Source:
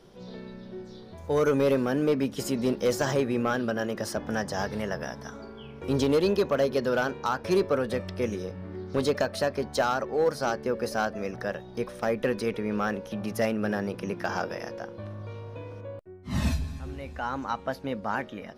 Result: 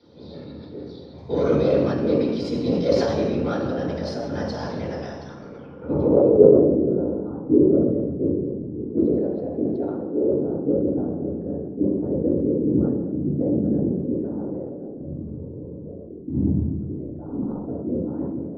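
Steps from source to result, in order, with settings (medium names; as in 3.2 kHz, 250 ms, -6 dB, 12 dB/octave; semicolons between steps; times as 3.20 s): 8.81–10.24 s: frequency weighting D; whisper effect; low-pass sweep 4.1 kHz -> 330 Hz, 5.21–6.58 s; reverberation RT60 1.0 s, pre-delay 3 ms, DRR -5.5 dB; decay stretcher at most 33 dB/s; trim -14.5 dB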